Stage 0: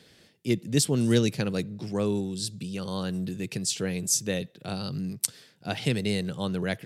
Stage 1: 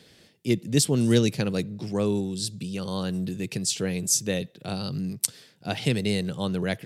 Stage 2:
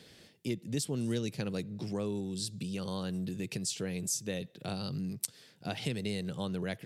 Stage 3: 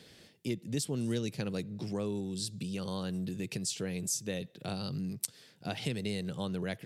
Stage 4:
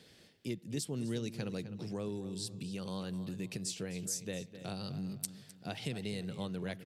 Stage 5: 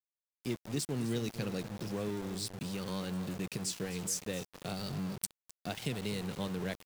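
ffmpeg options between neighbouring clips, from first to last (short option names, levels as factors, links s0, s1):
-af "equalizer=f=1500:t=o:w=0.77:g=-2,volume=1.26"
-af "acompressor=threshold=0.02:ratio=2.5,volume=0.841"
-af anull
-filter_complex "[0:a]asplit=2[s0][s1];[s1]adelay=257,lowpass=f=4200:p=1,volume=0.251,asplit=2[s2][s3];[s3]adelay=257,lowpass=f=4200:p=1,volume=0.33,asplit=2[s4][s5];[s5]adelay=257,lowpass=f=4200:p=1,volume=0.33[s6];[s0][s2][s4][s6]amix=inputs=4:normalize=0,volume=0.631"
-af "aeval=exprs='val(0)*gte(abs(val(0)),0.00708)':c=same,volume=1.33"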